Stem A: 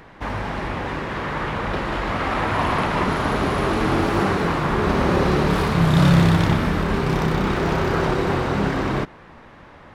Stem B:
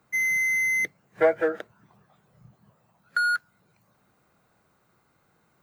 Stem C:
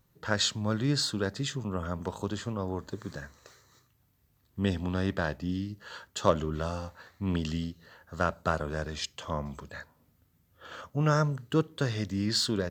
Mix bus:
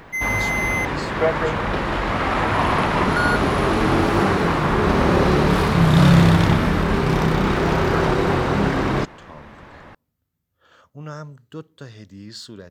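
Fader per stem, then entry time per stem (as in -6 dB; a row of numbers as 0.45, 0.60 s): +2.0, 0.0, -9.0 dB; 0.00, 0.00, 0.00 s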